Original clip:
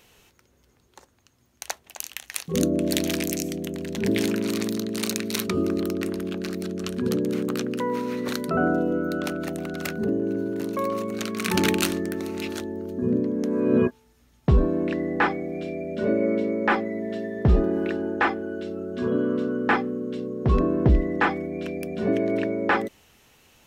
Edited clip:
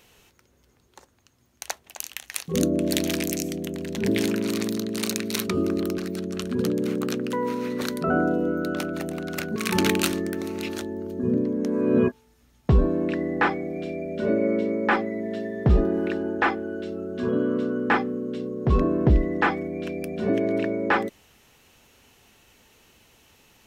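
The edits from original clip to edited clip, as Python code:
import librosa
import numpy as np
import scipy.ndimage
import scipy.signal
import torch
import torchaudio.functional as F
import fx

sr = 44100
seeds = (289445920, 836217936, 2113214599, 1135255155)

y = fx.edit(x, sr, fx.cut(start_s=5.98, length_s=0.47),
    fx.cut(start_s=10.03, length_s=1.32), tone=tone)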